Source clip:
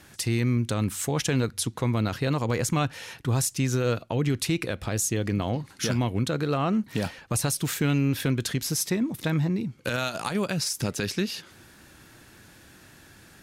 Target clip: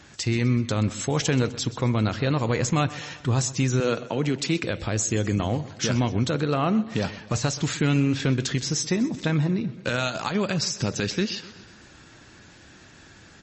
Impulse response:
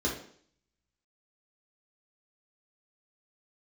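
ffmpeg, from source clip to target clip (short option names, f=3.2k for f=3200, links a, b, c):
-filter_complex "[0:a]asettb=1/sr,asplit=3[a][b][c];[a]atrim=end=3.804[d];[b]atrim=start=3.8:end=4.64,asetpts=PTS-STARTPTS,afade=t=in:d=0.004:c=qsin,afade=t=out:st=0.836:d=0.004:c=qsin,highpass=f=150:w=0.5412,highpass=f=150:w=1.3066[e];[c]atrim=start=4.636[f];[d][e]acrossfade=d=0.004:c1=hsin:c2=qsin[g];[g][f]acrossfade=d=0.004:c1=qsin:c2=hsin,aecho=1:1:127|254|381|508|635:0.141|0.0749|0.0397|0.021|0.0111,asplit=2[h][i];[1:a]atrim=start_sample=2205,asetrate=74970,aresample=44100,adelay=32[j];[i][j]afir=irnorm=-1:irlink=0,volume=-26.5dB[k];[h][k]amix=inputs=2:normalize=0,asettb=1/sr,asplit=3[l][m][n];[l]atrim=end=7.084[o];[m]atrim=start=7.08:end=7.8,asetpts=PTS-STARTPTS,afade=t=in:d=0.004:c=qsin,afade=t=out:st=0.716:d=0.004:c=qsin,acrusher=bits=4:mode=log:mix=0:aa=0.000001[p];[n]atrim=start=7.796[q];[o][p]acrossfade=d=0.004:c1=hsin:c2=qsin[r];[r][q]acrossfade=d=0.004:c1=qsin:c2=hsin,volume=2.5dB" -ar 32000 -c:a libmp3lame -b:a 32k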